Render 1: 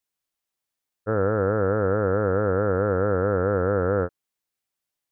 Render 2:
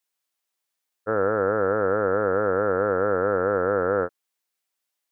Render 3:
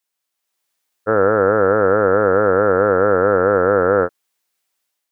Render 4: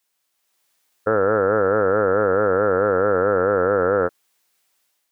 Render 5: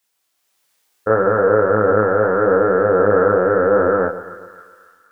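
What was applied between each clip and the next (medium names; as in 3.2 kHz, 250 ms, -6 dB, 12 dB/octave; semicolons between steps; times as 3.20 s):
high-pass 480 Hz 6 dB/octave; trim +3.5 dB
level rider gain up to 6.5 dB; trim +2 dB
peak limiter -14 dBFS, peak gain reduction 11 dB; trim +6 dB
two-band feedback delay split 1.2 kHz, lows 132 ms, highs 281 ms, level -13.5 dB; chorus voices 2, 0.79 Hz, delay 27 ms, depth 1.5 ms; trim +6 dB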